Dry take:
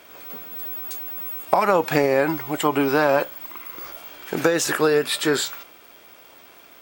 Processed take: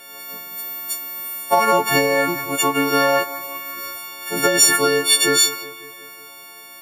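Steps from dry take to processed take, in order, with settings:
every partial snapped to a pitch grid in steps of 4 semitones
bucket-brigade delay 183 ms, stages 4,096, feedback 59%, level −15 dB

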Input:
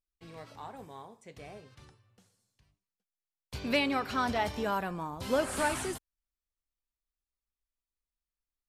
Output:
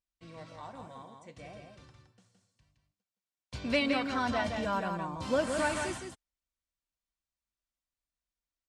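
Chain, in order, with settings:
low-pass filter 8,800 Hz 24 dB per octave
notch comb filter 420 Hz
single-tap delay 167 ms −5.5 dB

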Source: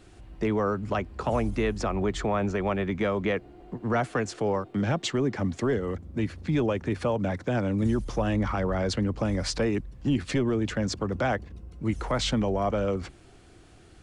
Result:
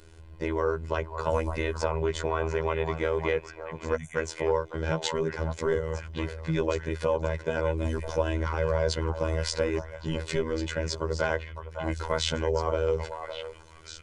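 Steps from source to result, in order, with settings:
time-frequency box erased 0:03.95–0:04.16, 270–5,700 Hz
echo through a band-pass that steps 558 ms, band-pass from 850 Hz, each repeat 1.4 octaves, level −4 dB
phases set to zero 80.3 Hz
comb filter 2 ms, depth 71%

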